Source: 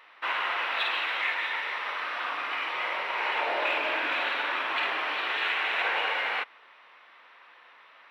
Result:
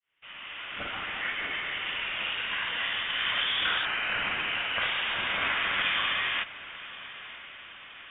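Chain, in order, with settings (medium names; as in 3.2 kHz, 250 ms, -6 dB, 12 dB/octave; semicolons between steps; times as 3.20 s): fade-in on the opening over 1.90 s; 3.85–4.82 s: elliptic band-stop 230–940 Hz; on a send: echo that smears into a reverb 1013 ms, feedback 58%, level -16 dB; on the sum: frequency inversion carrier 4 kHz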